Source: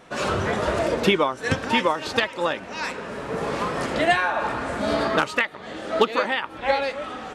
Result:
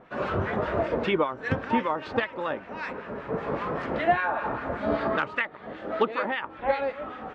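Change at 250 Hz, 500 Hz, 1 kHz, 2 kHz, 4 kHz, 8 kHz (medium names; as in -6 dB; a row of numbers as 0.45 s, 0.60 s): -3.5 dB, -4.0 dB, -3.5 dB, -5.5 dB, -12.5 dB, under -25 dB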